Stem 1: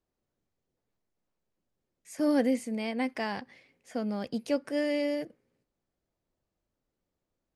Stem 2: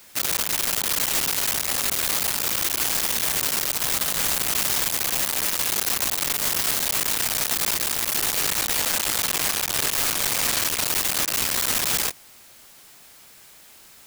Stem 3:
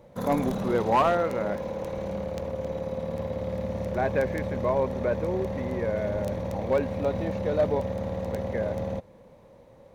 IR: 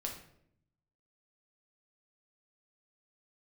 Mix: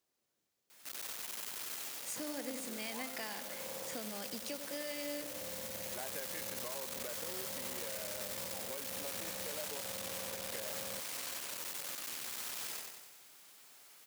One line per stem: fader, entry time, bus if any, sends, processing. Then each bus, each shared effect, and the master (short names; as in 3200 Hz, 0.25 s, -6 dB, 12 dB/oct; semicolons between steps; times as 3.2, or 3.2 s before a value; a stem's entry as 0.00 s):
-1.5 dB, 0.00 s, bus A, no send, echo send -21 dB, dry
-12.0 dB, 0.70 s, no bus, no send, echo send -4 dB, limiter -23 dBFS, peak gain reduction 9.5 dB; auto duck -8 dB, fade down 0.25 s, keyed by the first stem
-6.5 dB, 2.00 s, bus A, no send, no echo send, compressor, threshold -36 dBFS, peak gain reduction 16.5 dB
bus A: 0.0 dB, high shelf 2000 Hz +11.5 dB; compressor, threshold -40 dBFS, peak gain reduction 17.5 dB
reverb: off
echo: feedback echo 93 ms, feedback 57%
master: HPF 290 Hz 6 dB/oct